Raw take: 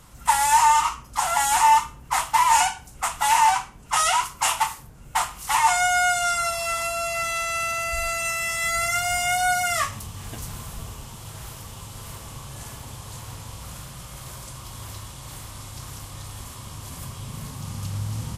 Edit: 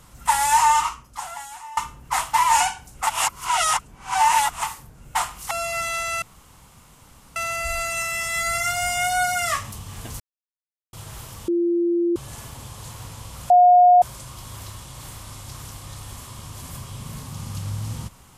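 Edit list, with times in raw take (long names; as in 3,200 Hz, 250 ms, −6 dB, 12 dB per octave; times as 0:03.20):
0:00.78–0:01.77: fade out quadratic, to −23.5 dB
0:03.07–0:04.63: reverse
0:05.51–0:06.93: remove
0:07.64: splice in room tone 1.14 s
0:10.48–0:11.21: silence
0:11.76–0:12.44: beep over 344 Hz −17.5 dBFS
0:13.78–0:14.30: beep over 717 Hz −9 dBFS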